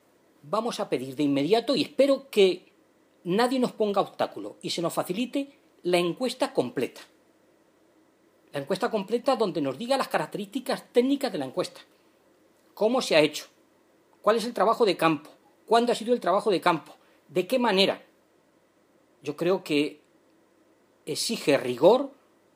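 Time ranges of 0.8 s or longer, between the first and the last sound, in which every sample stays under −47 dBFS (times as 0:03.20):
0:07.05–0:08.53
0:11.83–0:12.77
0:18.04–0:19.23
0:19.96–0:21.07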